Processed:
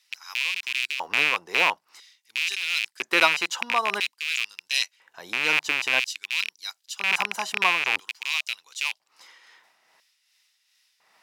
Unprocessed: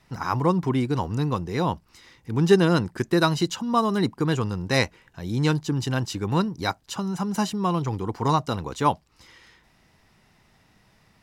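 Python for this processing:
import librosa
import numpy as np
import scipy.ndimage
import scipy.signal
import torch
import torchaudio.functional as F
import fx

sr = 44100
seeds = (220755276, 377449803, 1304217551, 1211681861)

y = fx.rattle_buzz(x, sr, strikes_db=-28.0, level_db=-10.0)
y = y * (1.0 - 0.45 / 2.0 + 0.45 / 2.0 * np.cos(2.0 * np.pi * 2.5 * (np.arange(len(y)) / sr)))
y = fx.filter_lfo_highpass(y, sr, shape='square', hz=0.5, low_hz=720.0, high_hz=3400.0, q=0.95)
y = F.gain(torch.from_numpy(y), 2.5).numpy()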